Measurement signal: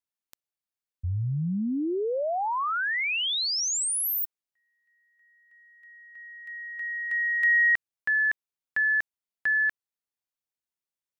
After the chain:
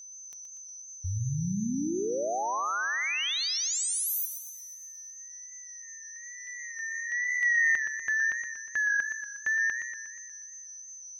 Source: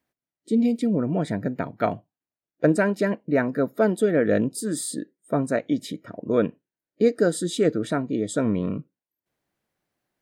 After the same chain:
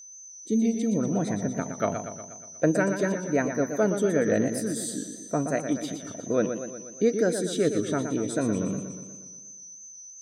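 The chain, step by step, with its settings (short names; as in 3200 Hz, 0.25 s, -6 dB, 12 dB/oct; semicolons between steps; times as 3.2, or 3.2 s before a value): wow and flutter 0.98 Hz 75 cents; whine 6100 Hz -40 dBFS; warbling echo 0.12 s, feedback 58%, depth 89 cents, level -8 dB; gain -3.5 dB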